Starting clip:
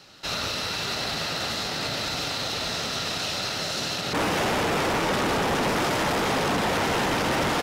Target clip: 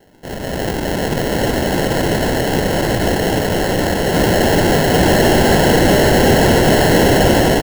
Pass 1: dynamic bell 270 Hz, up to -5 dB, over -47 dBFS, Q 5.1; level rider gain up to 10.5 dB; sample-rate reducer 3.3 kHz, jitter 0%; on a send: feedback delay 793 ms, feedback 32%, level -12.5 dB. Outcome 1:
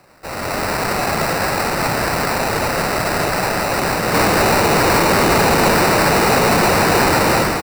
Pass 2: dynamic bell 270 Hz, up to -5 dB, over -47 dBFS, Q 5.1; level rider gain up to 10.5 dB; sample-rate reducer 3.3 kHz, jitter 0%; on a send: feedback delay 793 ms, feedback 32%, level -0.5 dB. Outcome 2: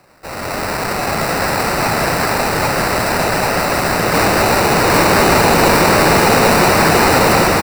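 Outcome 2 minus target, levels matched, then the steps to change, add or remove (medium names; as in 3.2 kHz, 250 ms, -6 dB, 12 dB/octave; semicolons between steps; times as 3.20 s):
sample-rate reducer: distortion -11 dB
change: sample-rate reducer 1.2 kHz, jitter 0%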